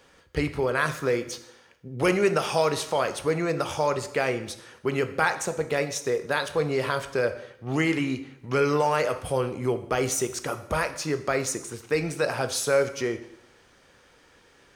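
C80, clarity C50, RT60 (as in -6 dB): 15.5 dB, 12.5 dB, 0.80 s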